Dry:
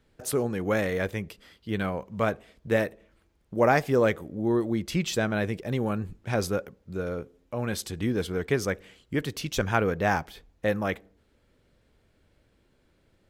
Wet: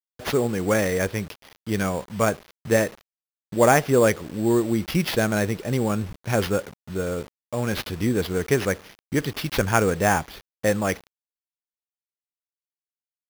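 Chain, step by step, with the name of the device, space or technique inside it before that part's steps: early 8-bit sampler (sample-rate reducer 8000 Hz, jitter 0%; bit-crush 8-bit); gain +4.5 dB

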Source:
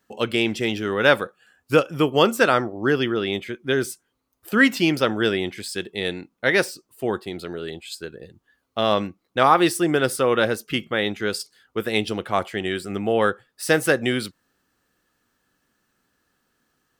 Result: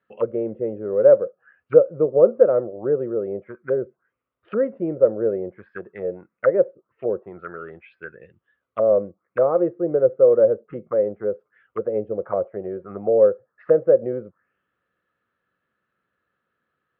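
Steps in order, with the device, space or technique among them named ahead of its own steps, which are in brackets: envelope filter bass rig (envelope low-pass 540–4000 Hz down, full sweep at -22 dBFS; speaker cabinet 75–2200 Hz, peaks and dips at 270 Hz -8 dB, 540 Hz +5 dB, 840 Hz -7 dB, 1300 Hz +5 dB); gain -6.5 dB

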